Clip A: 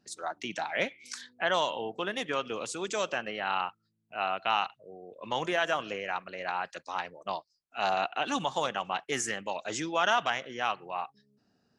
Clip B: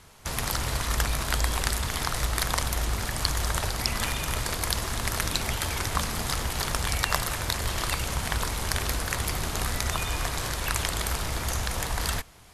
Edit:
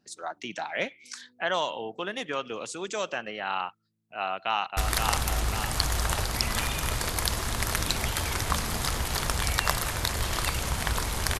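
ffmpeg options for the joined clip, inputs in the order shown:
ffmpeg -i cue0.wav -i cue1.wav -filter_complex "[0:a]apad=whole_dur=11.39,atrim=end=11.39,atrim=end=4.772[link_01];[1:a]atrim=start=2.218:end=8.84[link_02];[link_01][link_02]acrossfade=duration=0.004:curve1=hsin:curve2=hsin,asplit=2[link_03][link_04];[link_04]afade=type=in:start_time=4.19:duration=0.01,afade=type=out:start_time=4.77:duration=0.01,aecho=0:1:530|1060|1590|2120|2650|3180|3710:0.630957|0.347027|0.190865|0.104976|0.0577365|0.0317551|0.0174653[link_05];[link_03][link_05]amix=inputs=2:normalize=0" out.wav

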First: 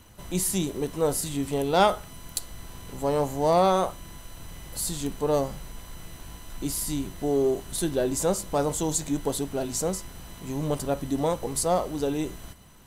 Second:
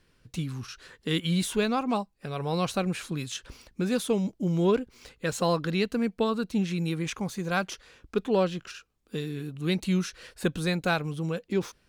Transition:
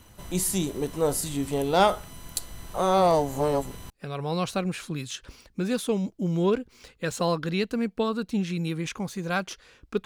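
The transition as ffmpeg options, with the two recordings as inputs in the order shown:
ffmpeg -i cue0.wav -i cue1.wav -filter_complex "[0:a]apad=whole_dur=10.05,atrim=end=10.05,asplit=2[link_01][link_02];[link_01]atrim=end=2.742[link_03];[link_02]atrim=start=2.738:end=3.902,asetpts=PTS-STARTPTS,areverse[link_04];[1:a]atrim=start=2.108:end=8.26[link_05];[link_03][link_04]acrossfade=duration=0.004:curve1=hsin:curve2=hsin[link_06];[link_06][link_05]acrossfade=duration=0.004:curve1=hsin:curve2=hsin" out.wav

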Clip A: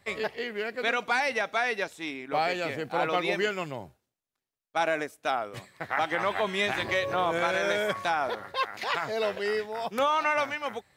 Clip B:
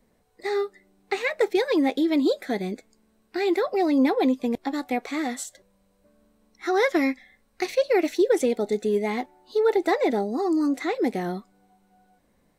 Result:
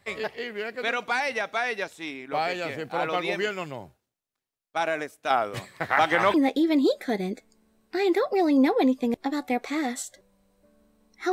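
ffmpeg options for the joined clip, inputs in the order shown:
ffmpeg -i cue0.wav -i cue1.wav -filter_complex "[0:a]asettb=1/sr,asplit=3[link_01][link_02][link_03];[link_01]atrim=end=5.304[link_04];[link_02]atrim=start=5.3:end=6.34,asetpts=PTS-STARTPTS,afade=type=in:duration=0.004:curve=qsin,afade=type=out:start_time=1.036:duration=0.004:curve=qsin,acontrast=68[link_05];[link_03]atrim=start=6.336[link_06];[link_04][link_05]acrossfade=duration=0.004:curve1=hsin:curve2=qsin[link_07];[link_07][link_06]acrossfade=duration=0.004:curve1=qsin:curve2=hsin,apad=whole_dur=11.32,atrim=end=11.32,atrim=end=6.342[link_08];[1:a]atrim=start=1.748:end=6.73[link_09];[link_08][link_09]acrossfade=duration=0.004:curve1=hsin:curve2=hsin" out.wav

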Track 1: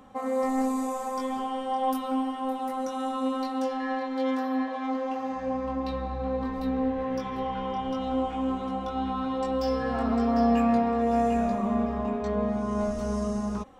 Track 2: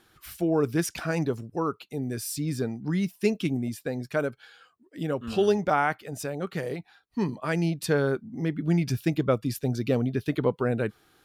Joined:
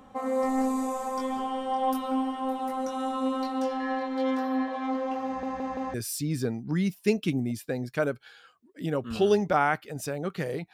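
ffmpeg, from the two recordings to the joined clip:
ffmpeg -i cue0.wav -i cue1.wav -filter_complex "[0:a]apad=whole_dur=10.73,atrim=end=10.73,asplit=4[link_01][link_02][link_03][link_04];[link_01]atrim=end=5.432[link_05];[link_02]atrim=start=5.258:end=5.432[link_06];[link_03]atrim=start=5.258:end=5.432[link_07];[link_04]atrim=start=5.258:end=5.432[link_08];[1:a]atrim=start=2.108:end=6.9[link_09];[link_05][link_06]acrossfade=duration=0.004:curve1=hsin:curve2=hsin[link_10];[link_10][link_07]acrossfade=duration=0.004:curve1=hsin:curve2=hsin[link_11];[link_11][link_08]acrossfade=duration=0.004:curve1=hsin:curve2=hsin[link_12];[link_12][link_09]acrossfade=duration=0.004:curve1=hsin:curve2=hsin" out.wav

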